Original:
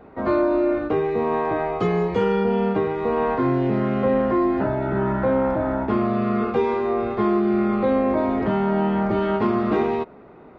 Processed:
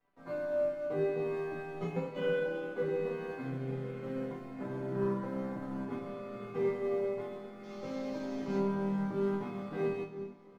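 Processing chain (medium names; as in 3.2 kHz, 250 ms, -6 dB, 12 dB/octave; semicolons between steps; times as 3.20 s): 7.63–8.58 s: one-bit delta coder 32 kbps, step -30.5 dBFS; crossover distortion -44.5 dBFS; comb 7 ms, depth 63%; 1.96–2.82 s: frequency shift +96 Hz; echo that smears into a reverb 914 ms, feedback 57%, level -15 dB; on a send at -5 dB: reverberation RT60 2.4 s, pre-delay 6 ms; on the sum: dynamic bell 140 Hz, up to +4 dB, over -29 dBFS, Q 0.82; chord resonator E3 minor, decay 0.34 s; upward expansion 1.5:1, over -47 dBFS; trim +1.5 dB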